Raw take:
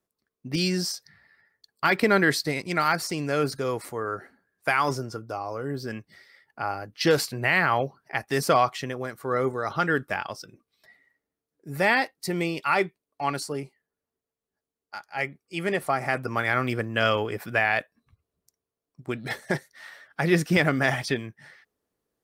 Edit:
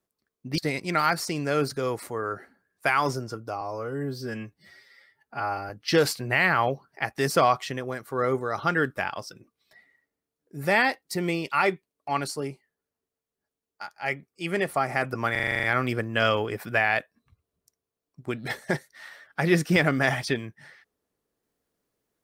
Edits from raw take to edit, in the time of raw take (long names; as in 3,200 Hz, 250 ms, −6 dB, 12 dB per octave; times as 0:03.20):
0:00.58–0:02.40: remove
0:05.43–0:06.82: time-stretch 1.5×
0:16.44: stutter 0.04 s, 9 plays